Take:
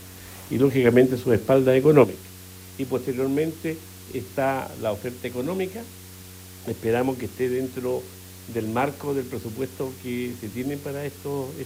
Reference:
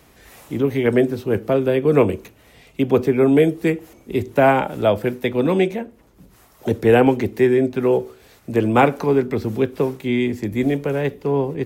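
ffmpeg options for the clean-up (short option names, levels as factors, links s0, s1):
-af "bandreject=f=92.4:t=h:w=4,bandreject=f=184.8:t=h:w=4,bandreject=f=277.2:t=h:w=4,bandreject=f=369.6:t=h:w=4,bandreject=f=462:t=h:w=4,afwtdn=0.0056,asetnsamples=n=441:p=0,asendcmd='2.04 volume volume 9.5dB',volume=1"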